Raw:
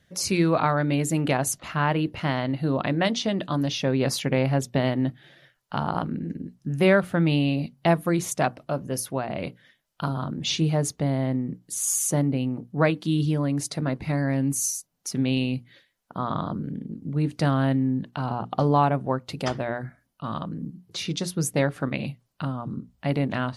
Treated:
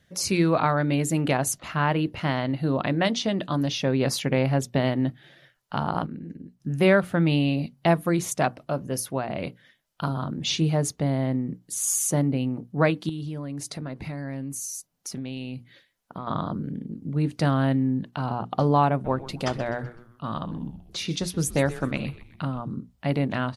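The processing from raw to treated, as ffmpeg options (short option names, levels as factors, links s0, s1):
-filter_complex "[0:a]asettb=1/sr,asplit=3[s0][s1][s2];[s0]atrim=end=13.094[s3];[s1]atrim=start=13.09:end=16.27,asetpts=PTS-STARTPTS,afade=t=in:d=0.004:c=qsin,afade=t=out:st=3.176:d=0.004:c=qsin,acompressor=threshold=0.0316:ratio=6:attack=3.2:release=140:knee=1:detection=peak[s4];[s2]atrim=start=16.266[s5];[s3][s4]acrossfade=d=0.004:c1=hsin:c2=qsin[s6];[s6][s5]acrossfade=d=0.004:c1=qsin:c2=hsin,asplit=3[s7][s8][s9];[s7]afade=t=out:st=19.04:d=0.02[s10];[s8]asplit=5[s11][s12][s13][s14][s15];[s12]adelay=127,afreqshift=-120,volume=0.168[s16];[s13]adelay=254,afreqshift=-240,volume=0.0785[s17];[s14]adelay=381,afreqshift=-360,volume=0.0372[s18];[s15]adelay=508,afreqshift=-480,volume=0.0174[s19];[s11][s16][s17][s18][s19]amix=inputs=5:normalize=0,afade=t=in:st=19.04:d=0.02,afade=t=out:st=22.6:d=0.02[s20];[s9]afade=t=in:st=22.6:d=0.02[s21];[s10][s20][s21]amix=inputs=3:normalize=0,asplit=3[s22][s23][s24];[s22]atrim=end=6.062[s25];[s23]atrim=start=6.058:end=6.602,asetpts=PTS-STARTPTS,volume=0.473[s26];[s24]atrim=start=6.598[s27];[s25][s26]acrossfade=d=0.004:c1=hsin:c2=hsin[s28];[s28][s27]acrossfade=d=0.004:c1=hsin:c2=hsin"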